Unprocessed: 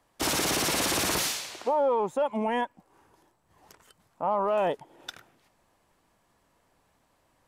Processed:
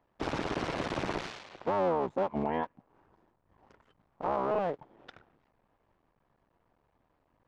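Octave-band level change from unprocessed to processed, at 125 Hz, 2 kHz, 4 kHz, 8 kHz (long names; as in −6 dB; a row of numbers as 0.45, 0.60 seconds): −0.5 dB, −7.5 dB, −14.5 dB, below −25 dB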